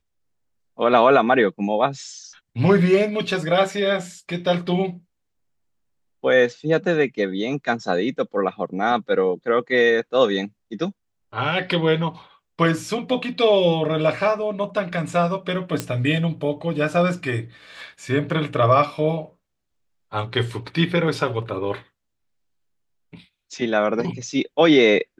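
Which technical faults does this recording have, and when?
15.80 s: pop -9 dBFS

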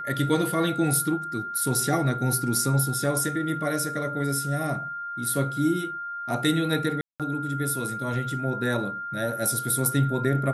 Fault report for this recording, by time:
whine 1.4 kHz -31 dBFS
7.01–7.20 s: dropout 187 ms

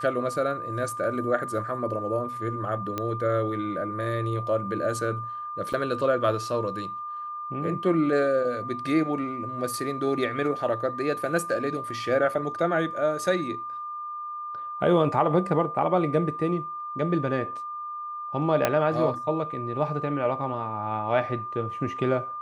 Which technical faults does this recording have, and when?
whine 1.2 kHz -32 dBFS
2.98 s: pop -15 dBFS
5.73–5.74 s: dropout 6.1 ms
18.65 s: pop -7 dBFS

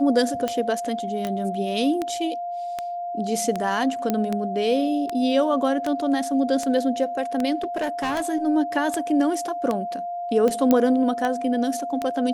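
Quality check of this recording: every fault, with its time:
tick 78 rpm -12 dBFS
whine 700 Hz -27 dBFS
1.27 s: pop -17 dBFS
4.10 s: pop -9 dBFS
7.62–8.23 s: clipped -21 dBFS
10.71 s: pop -6 dBFS

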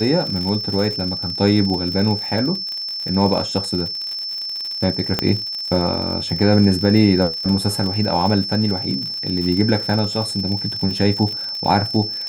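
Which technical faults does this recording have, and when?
crackle 75 per s -25 dBFS
whine 5.3 kHz -24 dBFS
5.19 s: pop -4 dBFS

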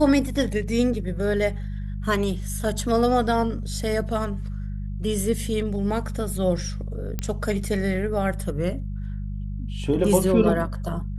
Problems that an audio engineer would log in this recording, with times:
hum 50 Hz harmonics 4 -30 dBFS
7.19 s: pop -13 dBFS

